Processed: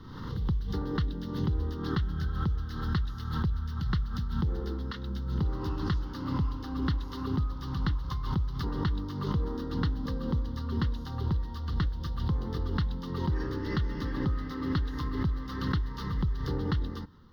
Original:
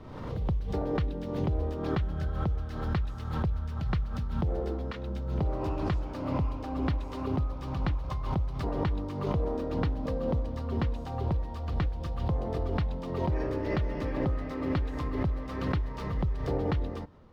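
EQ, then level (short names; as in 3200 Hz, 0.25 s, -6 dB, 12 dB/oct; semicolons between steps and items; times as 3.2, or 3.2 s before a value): bell 200 Hz +2.5 dB 1.1 oct; high shelf 2300 Hz +9 dB; fixed phaser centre 2400 Hz, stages 6; 0.0 dB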